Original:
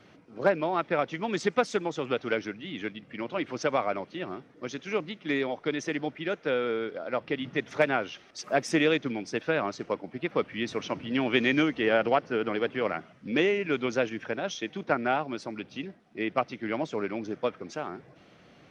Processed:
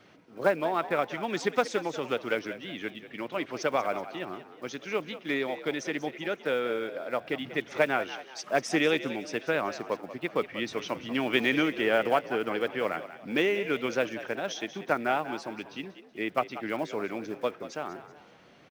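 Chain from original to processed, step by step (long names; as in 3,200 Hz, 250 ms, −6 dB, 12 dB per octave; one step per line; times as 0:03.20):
one scale factor per block 7 bits
low-shelf EQ 250 Hz −5.5 dB
on a send: echo with shifted repeats 188 ms, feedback 39%, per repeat +63 Hz, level −13.5 dB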